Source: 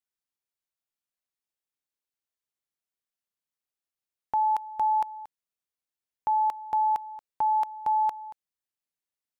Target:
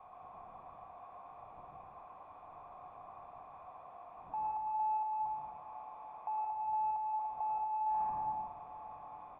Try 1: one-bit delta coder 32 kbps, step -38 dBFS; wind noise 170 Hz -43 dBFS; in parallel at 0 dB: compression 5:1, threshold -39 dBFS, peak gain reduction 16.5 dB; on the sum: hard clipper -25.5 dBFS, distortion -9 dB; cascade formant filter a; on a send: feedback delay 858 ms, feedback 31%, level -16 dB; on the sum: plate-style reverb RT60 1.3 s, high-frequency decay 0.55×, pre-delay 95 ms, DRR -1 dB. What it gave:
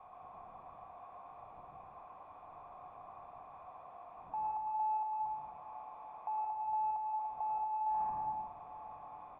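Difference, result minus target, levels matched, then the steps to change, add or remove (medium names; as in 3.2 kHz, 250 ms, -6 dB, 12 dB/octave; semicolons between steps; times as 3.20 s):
compression: peak gain reduction +8.5 dB
change: compression 5:1, threshold -28.5 dBFS, peak gain reduction 8.5 dB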